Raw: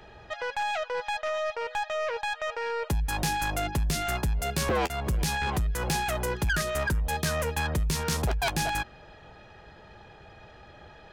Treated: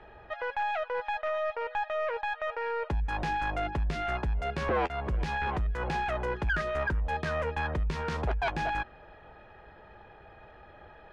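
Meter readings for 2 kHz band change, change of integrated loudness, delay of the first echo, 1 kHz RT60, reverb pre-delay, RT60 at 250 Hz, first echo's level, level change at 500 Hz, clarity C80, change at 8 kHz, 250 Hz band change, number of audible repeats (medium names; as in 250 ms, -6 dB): -2.0 dB, -2.5 dB, no echo, no reverb, no reverb, no reverb, no echo, -1.0 dB, no reverb, -22.5 dB, -4.5 dB, no echo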